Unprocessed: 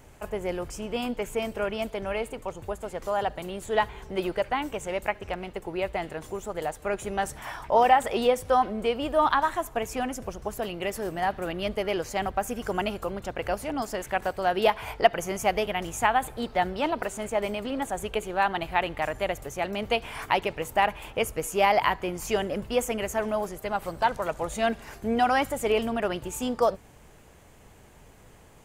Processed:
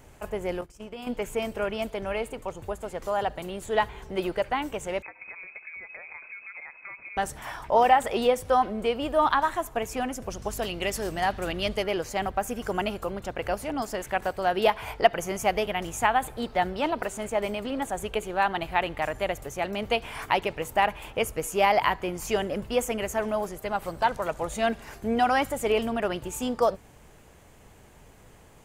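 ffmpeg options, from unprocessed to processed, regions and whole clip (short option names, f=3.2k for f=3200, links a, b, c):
-filter_complex "[0:a]asettb=1/sr,asplit=3[a][b][c];[a]atrim=end=0.614[d];[b]atrim=start=0.61:end=1.07,asetpts=PTS-STARTPTS,afade=t=in:d=0.004:c=qsin,afade=t=out:st=0.456:d=0.004:c=qsin,bandreject=f=50:t=h:w=6,bandreject=f=100:t=h:w=6,bandreject=f=150:t=h:w=6,bandreject=f=200:t=h:w=6,bandreject=f=250:t=h:w=6,bandreject=f=300:t=h:w=6,bandreject=f=350:t=h:w=6,bandreject=f=400:t=h:w=6,bandreject=f=450:t=h:w=6,agate=range=-19dB:threshold=-37dB:ratio=16:release=100:detection=peak,acompressor=threshold=-35dB:ratio=6:attack=3.2:release=140:knee=1:detection=peak[e];[c]atrim=start=1.066[f];[d][e]acrossfade=d=0.004:c1=hsin:c2=qsin[g];[g][f]acrossfade=d=0.004:c1=qsin:c2=hsin,asettb=1/sr,asplit=3[h][i][j];[h]atrim=end=5.024[k];[i]atrim=start=5.02:end=7.17,asetpts=PTS-STARTPTS,afade=t=in:d=0.004:c=qsin,afade=t=out:st=2.146:d=0.004:c=qsin,equalizer=f=740:t=o:w=0.55:g=-12,acompressor=threshold=-37dB:ratio=12:attack=3.2:release=140:knee=1:detection=peak,lowpass=f=2.2k:t=q:w=0.5098,lowpass=f=2.2k:t=q:w=0.6013,lowpass=f=2.2k:t=q:w=0.9,lowpass=f=2.2k:t=q:w=2.563,afreqshift=-2600[l];[j]atrim=start=7.166[m];[k][l]acrossfade=d=0.004:c1=hsin:c2=qsin[n];[n][m]acrossfade=d=0.004:c1=qsin:c2=hsin,asettb=1/sr,asplit=3[o][p][q];[o]atrim=end=10.304[r];[p]atrim=start=10.3:end=11.84,asetpts=PTS-STARTPTS,afade=t=in:d=0.004:c=qsin,afade=t=out:st=1.536:d=0.004:c=qsin,equalizer=f=5.5k:t=o:w=2.2:g=8,aeval=exprs='val(0)+0.00891*(sin(2*PI*50*n/s)+sin(2*PI*2*50*n/s)/2+sin(2*PI*3*50*n/s)/3+sin(2*PI*4*50*n/s)/4+sin(2*PI*5*50*n/s)/5)':c=same[s];[q]atrim=start=11.836[t];[r][s]acrossfade=d=0.004:c1=hsin:c2=qsin[u];[u][t]acrossfade=d=0.004:c1=qsin:c2=hsin"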